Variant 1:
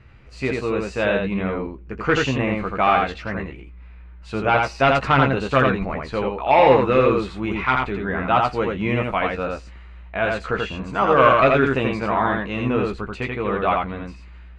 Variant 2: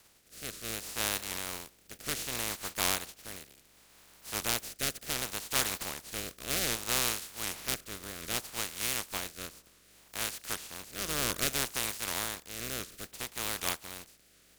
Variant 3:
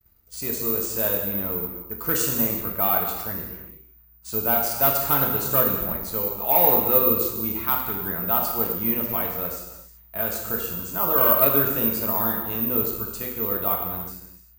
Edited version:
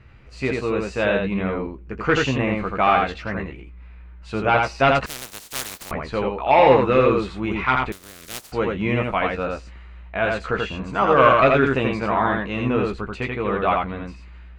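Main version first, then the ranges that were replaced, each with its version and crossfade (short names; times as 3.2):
1
5.06–5.91 from 2
7.92–8.52 from 2
not used: 3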